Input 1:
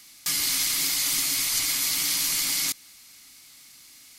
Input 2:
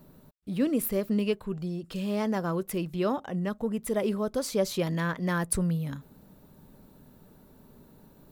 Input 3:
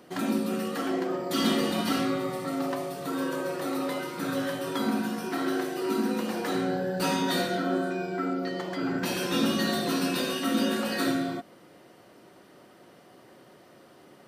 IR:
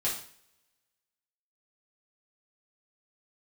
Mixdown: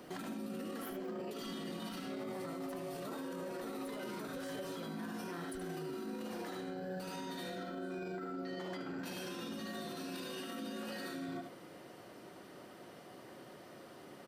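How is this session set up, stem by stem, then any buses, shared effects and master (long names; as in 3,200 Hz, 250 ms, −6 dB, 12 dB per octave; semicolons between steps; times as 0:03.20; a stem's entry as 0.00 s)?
muted
−16.0 dB, 0.00 s, no bus, no send, echo send −8 dB, no processing
−4.5 dB, 0.00 s, bus A, no send, echo send −10.5 dB, no processing
bus A: 0.0 dB, compressor whose output falls as the input rises −37 dBFS, ratio −0.5; brickwall limiter −31.5 dBFS, peak gain reduction 10.5 dB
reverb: not used
echo: single-tap delay 75 ms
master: brickwall limiter −34.5 dBFS, peak gain reduction 9.5 dB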